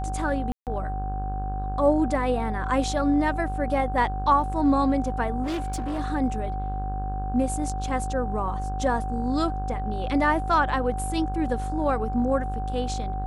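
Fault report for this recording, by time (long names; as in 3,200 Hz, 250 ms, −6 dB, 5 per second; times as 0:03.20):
mains buzz 50 Hz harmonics 33 −30 dBFS
whistle 760 Hz −32 dBFS
0:00.52–0:00.67: drop-out 148 ms
0:05.43–0:06.00: clipping −25 dBFS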